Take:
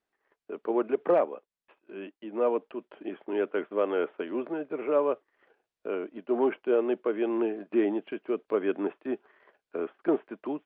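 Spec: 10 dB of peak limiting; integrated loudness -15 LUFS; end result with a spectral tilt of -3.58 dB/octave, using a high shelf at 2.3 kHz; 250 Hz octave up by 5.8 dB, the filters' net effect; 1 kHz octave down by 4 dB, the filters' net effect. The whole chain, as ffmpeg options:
-af "equalizer=f=250:t=o:g=9,equalizer=f=1000:t=o:g=-8,highshelf=f=2300:g=9,volume=6.31,alimiter=limit=0.631:level=0:latency=1"

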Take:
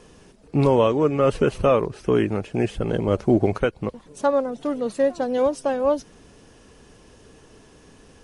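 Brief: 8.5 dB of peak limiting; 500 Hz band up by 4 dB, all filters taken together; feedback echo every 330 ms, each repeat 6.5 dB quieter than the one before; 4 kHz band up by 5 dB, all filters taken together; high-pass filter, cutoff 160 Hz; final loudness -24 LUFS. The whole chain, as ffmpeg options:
-af "highpass=160,equalizer=f=500:t=o:g=4.5,equalizer=f=4000:t=o:g=7,alimiter=limit=0.237:level=0:latency=1,aecho=1:1:330|660|990|1320|1650|1980:0.473|0.222|0.105|0.0491|0.0231|0.0109,volume=0.841"

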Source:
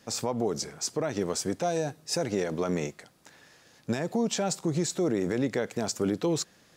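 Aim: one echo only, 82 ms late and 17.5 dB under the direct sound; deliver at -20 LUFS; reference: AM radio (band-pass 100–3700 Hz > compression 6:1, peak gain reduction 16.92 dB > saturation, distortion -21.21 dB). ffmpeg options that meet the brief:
-af "highpass=100,lowpass=3700,aecho=1:1:82:0.133,acompressor=threshold=0.00891:ratio=6,asoftclip=threshold=0.0237,volume=18.8"

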